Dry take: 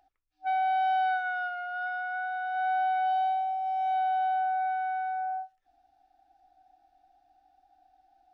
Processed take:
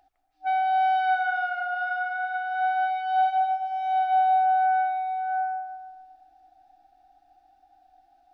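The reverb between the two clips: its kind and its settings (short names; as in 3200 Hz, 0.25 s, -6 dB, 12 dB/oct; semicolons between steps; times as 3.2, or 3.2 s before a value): digital reverb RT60 1.7 s, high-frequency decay 0.35×, pre-delay 0.115 s, DRR 6 dB; gain +3.5 dB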